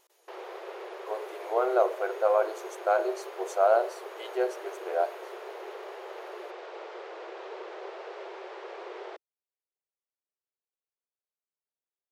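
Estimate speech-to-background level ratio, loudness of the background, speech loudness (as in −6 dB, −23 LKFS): 13.5 dB, −42.0 LKFS, −28.5 LKFS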